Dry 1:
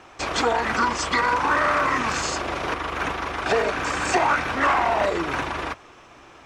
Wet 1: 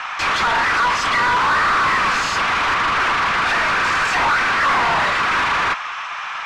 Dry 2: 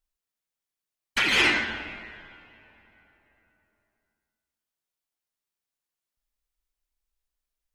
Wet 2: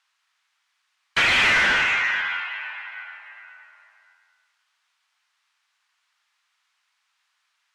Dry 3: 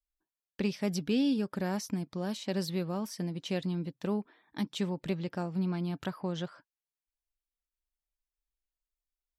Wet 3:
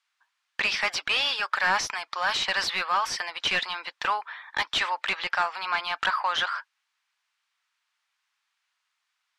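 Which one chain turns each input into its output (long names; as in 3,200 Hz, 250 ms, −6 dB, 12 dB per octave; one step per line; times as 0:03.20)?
high-pass filter 1,000 Hz 24 dB per octave
mid-hump overdrive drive 34 dB, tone 2,300 Hz, clips at −9 dBFS
high-frequency loss of the air 62 metres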